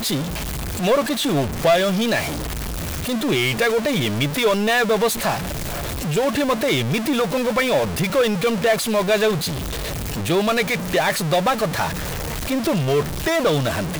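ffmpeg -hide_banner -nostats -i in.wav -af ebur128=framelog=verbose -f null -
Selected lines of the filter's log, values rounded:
Integrated loudness:
  I:         -20.5 LUFS
  Threshold: -30.5 LUFS
Loudness range:
  LRA:         1.5 LU
  Threshold: -40.4 LUFS
  LRA low:   -21.2 LUFS
  LRA high:  -19.7 LUFS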